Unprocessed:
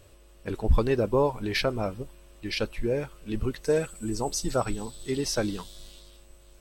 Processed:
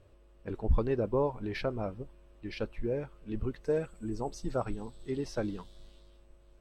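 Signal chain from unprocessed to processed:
low-pass filter 1,300 Hz 6 dB per octave
level −5 dB

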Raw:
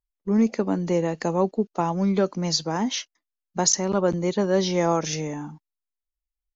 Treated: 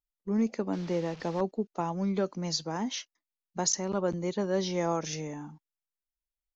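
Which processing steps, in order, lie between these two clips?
0:00.73–0:01.41: linear delta modulator 32 kbit/s, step −34 dBFS
level −7.5 dB

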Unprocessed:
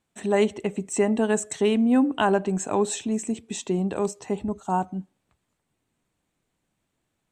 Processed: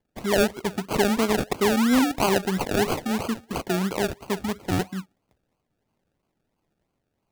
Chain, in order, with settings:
parametric band 8,000 Hz +7.5 dB 0.37 octaves
sample-and-hold swept by an LFO 34×, swing 60% 3 Hz

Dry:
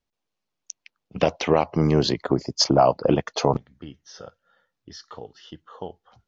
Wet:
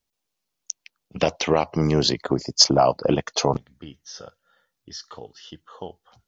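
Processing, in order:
high-shelf EQ 4,300 Hz +11.5 dB
level −1 dB

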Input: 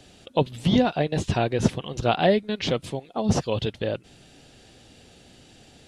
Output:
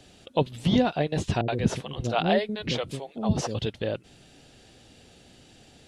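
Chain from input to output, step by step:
0:01.41–0:03.55: multiband delay without the direct sound lows, highs 70 ms, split 440 Hz
level −2 dB

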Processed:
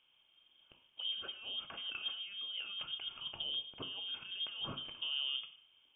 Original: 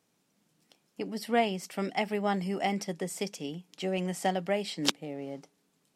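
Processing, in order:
high-frequency loss of the air 360 metres
compressor whose output falls as the input rises −41 dBFS, ratio −1
parametric band 1,500 Hz −14.5 dB 0.22 octaves
coupled-rooms reverb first 0.56 s, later 1.6 s, DRR 7 dB
voice inversion scrambler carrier 3,400 Hz
level −2.5 dB

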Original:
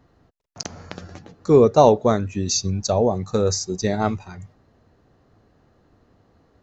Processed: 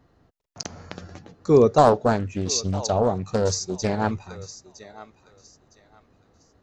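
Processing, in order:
feedback echo with a high-pass in the loop 961 ms, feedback 28%, high-pass 730 Hz, level −14 dB
0:01.78–0:04.11: highs frequency-modulated by the lows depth 0.43 ms
level −2 dB

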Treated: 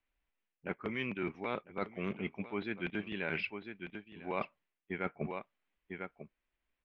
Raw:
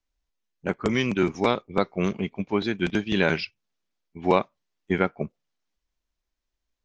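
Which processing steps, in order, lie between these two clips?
transistor ladder low-pass 3,000 Hz, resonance 40%
low-shelf EQ 97 Hz −6 dB
single-tap delay 1,000 ms −19.5 dB
reversed playback
downward compressor 5 to 1, threshold −43 dBFS, peak gain reduction 18.5 dB
reversed playback
level +8 dB

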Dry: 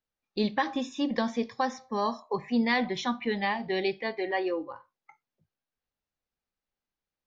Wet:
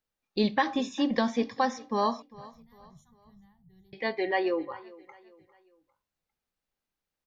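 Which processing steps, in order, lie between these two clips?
0:02.22–0:03.93: inverse Chebyshev band-stop filter 240–5,200 Hz, stop band 40 dB
repeating echo 401 ms, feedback 40%, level −21 dB
level +2 dB

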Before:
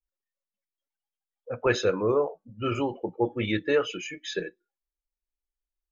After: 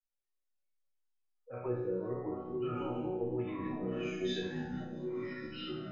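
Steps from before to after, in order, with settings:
peak hold with a decay on every bin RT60 0.82 s
treble cut that deepens with the level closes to 420 Hz, closed at −18.5 dBFS
0:03.42–0:04.10: compressor whose output falls as the input rises −31 dBFS, ratio −1
delay with pitch and tempo change per echo 170 ms, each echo −4 semitones, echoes 3
resonators tuned to a chord B2 major, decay 0.66 s
delay with a high-pass on its return 223 ms, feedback 74%, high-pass 4,300 Hz, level −20 dB
level +7.5 dB

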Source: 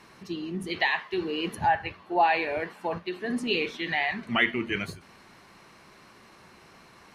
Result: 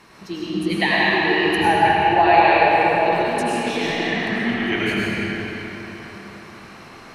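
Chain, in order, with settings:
0:03.02–0:04.71: compressor whose output falls as the input rises −35 dBFS, ratio −1
comb and all-pass reverb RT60 4.3 s, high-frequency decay 0.7×, pre-delay 60 ms, DRR −7.5 dB
level +3.5 dB

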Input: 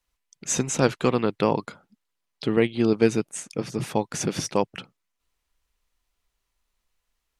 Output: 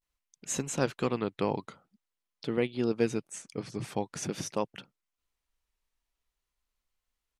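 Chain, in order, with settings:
pitch vibrato 0.47 Hz 91 cents
level −8 dB

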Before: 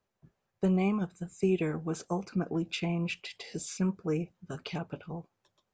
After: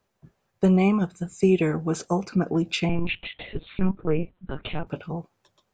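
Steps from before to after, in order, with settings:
0:02.89–0:04.87: linear-prediction vocoder at 8 kHz pitch kept
level +8 dB

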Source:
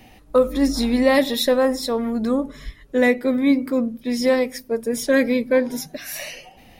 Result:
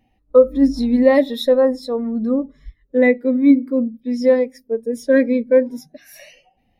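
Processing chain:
pitch vibrato 2.7 Hz 23 cents
every bin expanded away from the loudest bin 1.5 to 1
level +4 dB

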